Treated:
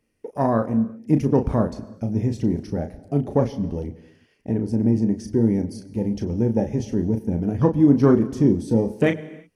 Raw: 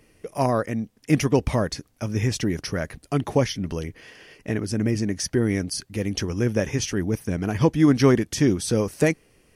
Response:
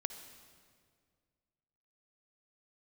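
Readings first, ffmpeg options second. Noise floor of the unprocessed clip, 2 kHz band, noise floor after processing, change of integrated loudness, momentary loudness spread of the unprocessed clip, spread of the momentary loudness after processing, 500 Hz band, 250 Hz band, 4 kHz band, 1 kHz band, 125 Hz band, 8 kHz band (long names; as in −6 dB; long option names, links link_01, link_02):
−61 dBFS, can't be measured, −63 dBFS, +2.0 dB, 11 LU, 11 LU, +1.0 dB, +3.5 dB, below −10 dB, 0.0 dB, +1.5 dB, below −15 dB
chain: -filter_complex "[0:a]equalizer=frequency=220:width_type=o:width=0.39:gain=6,afwtdn=0.0447,asplit=2[link_01][link_02];[1:a]atrim=start_sample=2205,afade=type=out:start_time=0.38:duration=0.01,atrim=end_sample=17199,adelay=35[link_03];[link_02][link_03]afir=irnorm=-1:irlink=0,volume=-6.5dB[link_04];[link_01][link_04]amix=inputs=2:normalize=0"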